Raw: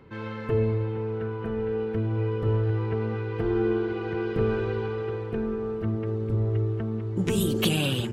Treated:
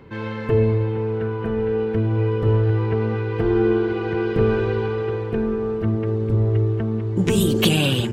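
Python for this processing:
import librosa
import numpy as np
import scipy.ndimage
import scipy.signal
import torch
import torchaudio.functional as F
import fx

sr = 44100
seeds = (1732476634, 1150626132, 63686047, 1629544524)

y = fx.peak_eq(x, sr, hz=11000.0, db=-5.0, octaves=0.22)
y = fx.notch(y, sr, hz=1300.0, q=20.0)
y = y * 10.0 ** (6.5 / 20.0)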